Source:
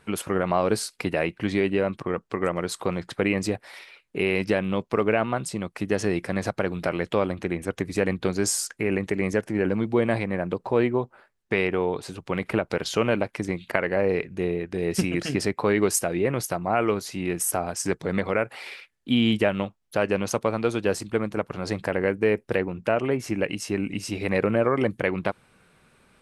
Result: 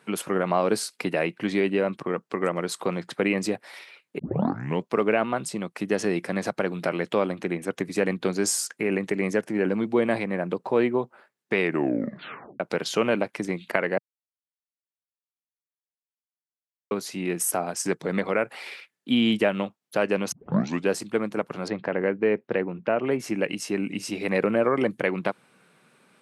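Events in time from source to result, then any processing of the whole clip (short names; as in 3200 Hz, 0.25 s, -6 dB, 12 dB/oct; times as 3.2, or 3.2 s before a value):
4.19 tape start 0.65 s
11.6 tape stop 1.00 s
13.98–16.91 mute
20.32 tape start 0.57 s
21.68–23.07 air absorption 260 m
whole clip: HPF 150 Hz 24 dB/oct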